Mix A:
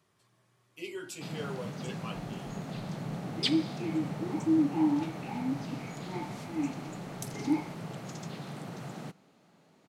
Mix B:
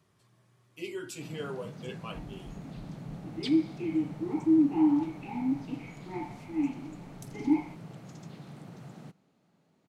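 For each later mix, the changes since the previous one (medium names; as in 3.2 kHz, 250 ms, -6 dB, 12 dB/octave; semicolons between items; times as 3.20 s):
first sound -9.5 dB; master: add bass shelf 260 Hz +7.5 dB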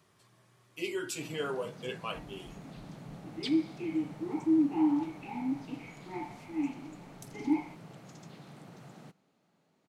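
speech +5.0 dB; master: add bass shelf 260 Hz -7.5 dB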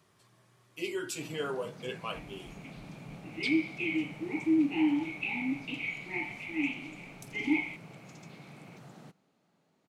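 second sound: add resonant high shelf 1.7 kHz +11 dB, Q 3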